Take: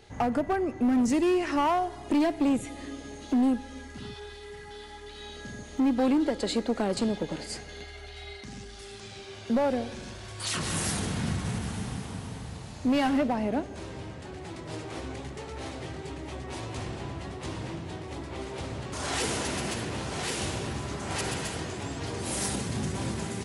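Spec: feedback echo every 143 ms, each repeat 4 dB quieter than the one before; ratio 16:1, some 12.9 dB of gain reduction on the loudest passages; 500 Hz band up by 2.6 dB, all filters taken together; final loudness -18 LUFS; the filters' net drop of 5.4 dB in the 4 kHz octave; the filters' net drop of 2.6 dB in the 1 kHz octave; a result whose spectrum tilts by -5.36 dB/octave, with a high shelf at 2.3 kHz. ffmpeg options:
-af "equalizer=f=500:t=o:g=5,equalizer=f=1000:t=o:g=-5.5,highshelf=f=2300:g=-3,equalizer=f=4000:t=o:g=-4,acompressor=threshold=0.0224:ratio=16,aecho=1:1:143|286|429|572|715|858|1001|1144|1287:0.631|0.398|0.25|0.158|0.0994|0.0626|0.0394|0.0249|0.0157,volume=8.41"

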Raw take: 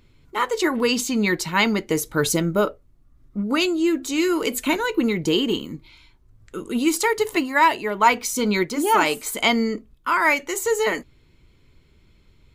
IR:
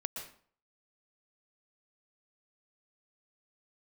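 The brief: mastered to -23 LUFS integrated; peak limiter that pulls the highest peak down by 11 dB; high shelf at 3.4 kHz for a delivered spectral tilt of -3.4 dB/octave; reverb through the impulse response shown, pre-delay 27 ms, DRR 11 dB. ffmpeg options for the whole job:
-filter_complex "[0:a]highshelf=f=3400:g=9,alimiter=limit=0.211:level=0:latency=1,asplit=2[s0][s1];[1:a]atrim=start_sample=2205,adelay=27[s2];[s1][s2]afir=irnorm=-1:irlink=0,volume=0.266[s3];[s0][s3]amix=inputs=2:normalize=0"

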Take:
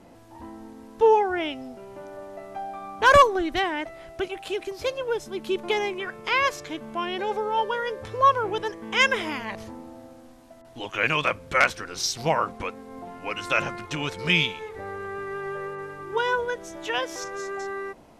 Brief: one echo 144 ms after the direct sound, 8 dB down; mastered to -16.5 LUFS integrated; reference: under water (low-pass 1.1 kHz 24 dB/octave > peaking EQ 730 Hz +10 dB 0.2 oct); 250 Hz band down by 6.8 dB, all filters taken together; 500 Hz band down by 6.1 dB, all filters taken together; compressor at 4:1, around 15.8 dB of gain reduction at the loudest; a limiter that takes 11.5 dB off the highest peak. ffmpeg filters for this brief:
-af "equalizer=f=250:t=o:g=-8,equalizer=f=500:t=o:g=-6,acompressor=threshold=0.0224:ratio=4,alimiter=level_in=1.88:limit=0.0631:level=0:latency=1,volume=0.531,lowpass=f=1100:w=0.5412,lowpass=f=1100:w=1.3066,equalizer=f=730:t=o:w=0.2:g=10,aecho=1:1:144:0.398,volume=16.8"

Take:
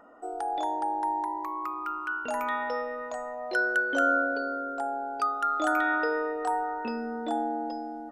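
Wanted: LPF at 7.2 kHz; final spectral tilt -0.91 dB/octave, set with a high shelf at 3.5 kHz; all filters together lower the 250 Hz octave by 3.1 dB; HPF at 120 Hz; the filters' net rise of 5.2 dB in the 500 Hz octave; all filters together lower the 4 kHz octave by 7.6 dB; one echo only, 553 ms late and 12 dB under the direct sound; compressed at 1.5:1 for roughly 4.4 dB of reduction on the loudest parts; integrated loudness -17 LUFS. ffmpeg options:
-af "highpass=120,lowpass=7200,equalizer=f=250:t=o:g=-7,equalizer=f=500:t=o:g=8,highshelf=f=3500:g=-3.5,equalizer=f=4000:t=o:g=-7.5,acompressor=threshold=0.0251:ratio=1.5,aecho=1:1:553:0.251,volume=5.01"

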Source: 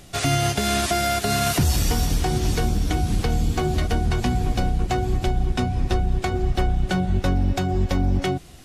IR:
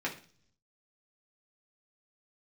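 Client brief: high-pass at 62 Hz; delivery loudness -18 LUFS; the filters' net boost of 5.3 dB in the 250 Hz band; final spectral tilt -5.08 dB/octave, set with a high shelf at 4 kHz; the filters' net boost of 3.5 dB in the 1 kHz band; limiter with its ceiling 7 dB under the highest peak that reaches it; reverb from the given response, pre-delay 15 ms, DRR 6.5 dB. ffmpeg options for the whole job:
-filter_complex "[0:a]highpass=62,equalizer=f=250:t=o:g=7,equalizer=f=1000:t=o:g=5,highshelf=f=4000:g=4.5,alimiter=limit=0.237:level=0:latency=1,asplit=2[s0][s1];[1:a]atrim=start_sample=2205,adelay=15[s2];[s1][s2]afir=irnorm=-1:irlink=0,volume=0.237[s3];[s0][s3]amix=inputs=2:normalize=0,volume=1.58"

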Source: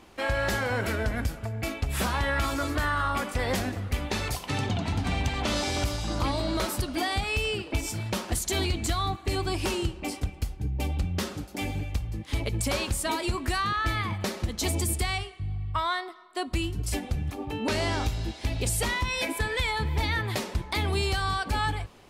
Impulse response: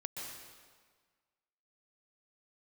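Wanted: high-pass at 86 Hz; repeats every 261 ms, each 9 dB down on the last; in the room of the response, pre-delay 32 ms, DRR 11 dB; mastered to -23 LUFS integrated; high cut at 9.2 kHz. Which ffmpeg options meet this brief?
-filter_complex "[0:a]highpass=86,lowpass=9200,aecho=1:1:261|522|783|1044:0.355|0.124|0.0435|0.0152,asplit=2[s0][s1];[1:a]atrim=start_sample=2205,adelay=32[s2];[s1][s2]afir=irnorm=-1:irlink=0,volume=0.282[s3];[s0][s3]amix=inputs=2:normalize=0,volume=2"

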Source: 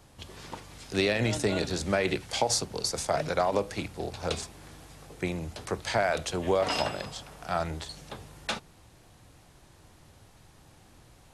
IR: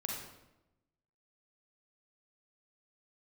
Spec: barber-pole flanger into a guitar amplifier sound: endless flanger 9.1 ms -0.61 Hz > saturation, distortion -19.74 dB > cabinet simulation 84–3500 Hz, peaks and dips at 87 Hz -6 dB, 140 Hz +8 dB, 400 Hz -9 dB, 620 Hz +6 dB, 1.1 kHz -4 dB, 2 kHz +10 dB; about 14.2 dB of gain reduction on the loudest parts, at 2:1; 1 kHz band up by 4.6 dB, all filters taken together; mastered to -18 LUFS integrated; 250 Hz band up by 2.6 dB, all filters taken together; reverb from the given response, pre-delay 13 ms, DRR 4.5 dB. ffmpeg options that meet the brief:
-filter_complex "[0:a]equalizer=f=250:t=o:g=4,equalizer=f=1000:t=o:g=5.5,acompressor=threshold=0.00501:ratio=2,asplit=2[s0][s1];[1:a]atrim=start_sample=2205,adelay=13[s2];[s1][s2]afir=irnorm=-1:irlink=0,volume=0.501[s3];[s0][s3]amix=inputs=2:normalize=0,asplit=2[s4][s5];[s5]adelay=9.1,afreqshift=-0.61[s6];[s4][s6]amix=inputs=2:normalize=1,asoftclip=threshold=0.0299,highpass=84,equalizer=f=87:t=q:w=4:g=-6,equalizer=f=140:t=q:w=4:g=8,equalizer=f=400:t=q:w=4:g=-9,equalizer=f=620:t=q:w=4:g=6,equalizer=f=1100:t=q:w=4:g=-4,equalizer=f=2000:t=q:w=4:g=10,lowpass=f=3500:w=0.5412,lowpass=f=3500:w=1.3066,volume=17.8"

